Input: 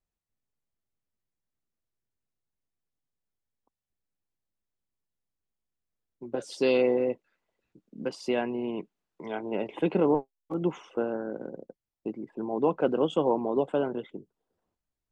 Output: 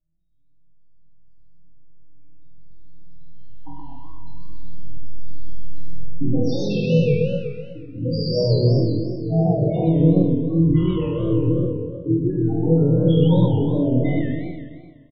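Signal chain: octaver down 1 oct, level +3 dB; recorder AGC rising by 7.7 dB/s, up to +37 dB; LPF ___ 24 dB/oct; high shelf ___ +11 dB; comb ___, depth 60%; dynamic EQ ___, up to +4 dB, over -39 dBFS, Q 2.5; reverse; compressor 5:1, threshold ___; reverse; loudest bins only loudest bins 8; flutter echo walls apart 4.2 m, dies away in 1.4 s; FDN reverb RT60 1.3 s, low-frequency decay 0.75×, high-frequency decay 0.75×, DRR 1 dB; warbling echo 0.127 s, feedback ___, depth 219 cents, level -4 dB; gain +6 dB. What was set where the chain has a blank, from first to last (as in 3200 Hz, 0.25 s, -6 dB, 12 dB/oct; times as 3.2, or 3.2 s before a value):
5100 Hz, 3700 Hz, 6.4 ms, 160 Hz, -30 dBFS, 52%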